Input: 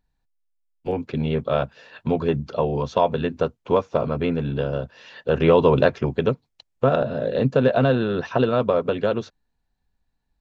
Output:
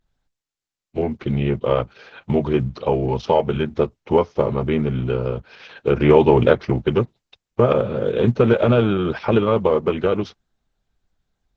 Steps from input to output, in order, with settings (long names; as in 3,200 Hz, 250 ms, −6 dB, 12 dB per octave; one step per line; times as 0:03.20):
speed change −10%
level +3 dB
Opus 10 kbit/s 48,000 Hz